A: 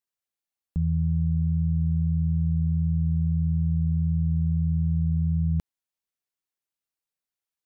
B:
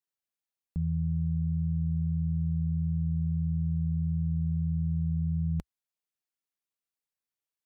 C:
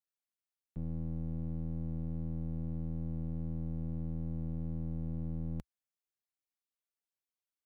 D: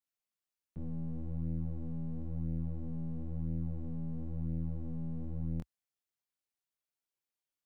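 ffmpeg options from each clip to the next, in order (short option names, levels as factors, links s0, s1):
-af "equalizer=f=63:t=o:w=0.77:g=-4,volume=0.631"
-af "aeval=exprs='0.0708*(cos(1*acos(clip(val(0)/0.0708,-1,1)))-cos(1*PI/2))+0.00562*(cos(4*acos(clip(val(0)/0.0708,-1,1)))-cos(4*PI/2))+0.00126*(cos(8*acos(clip(val(0)/0.0708,-1,1)))-cos(8*PI/2))':c=same,aeval=exprs='clip(val(0),-1,0.00944)':c=same,volume=0.473"
-af "flanger=delay=19.5:depth=4.6:speed=0.99,volume=1.33"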